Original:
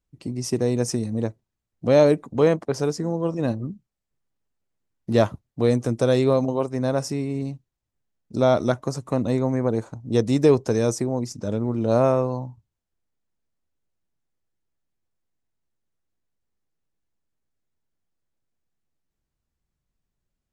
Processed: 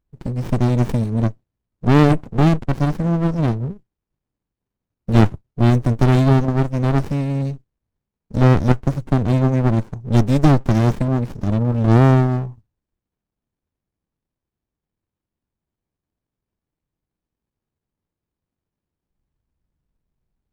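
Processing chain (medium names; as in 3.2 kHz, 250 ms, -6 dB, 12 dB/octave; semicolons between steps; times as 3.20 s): dynamic bell 250 Hz, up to -3 dB, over -36 dBFS, Q 7; sliding maximum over 65 samples; trim +6 dB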